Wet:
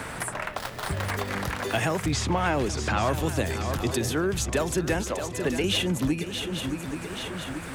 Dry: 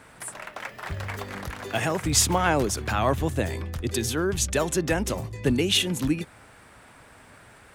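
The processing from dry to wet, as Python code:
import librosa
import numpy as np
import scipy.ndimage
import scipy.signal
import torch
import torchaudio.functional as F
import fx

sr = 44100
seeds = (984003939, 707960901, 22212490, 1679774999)

y = fx.dead_time(x, sr, dead_ms=0.21, at=(0.57, 1.11))
y = fx.bass_treble(y, sr, bass_db=-14, treble_db=-13, at=(5.01, 5.64))
y = 10.0 ** (-12.5 / 20.0) * np.tanh(y / 10.0 ** (-12.5 / 20.0))
y = fx.air_absorb(y, sr, metres=92.0, at=(2.06, 3.03))
y = fx.echo_swing(y, sr, ms=833, ratio=3, feedback_pct=31, wet_db=-12.0)
y = fx.band_squash(y, sr, depth_pct=70)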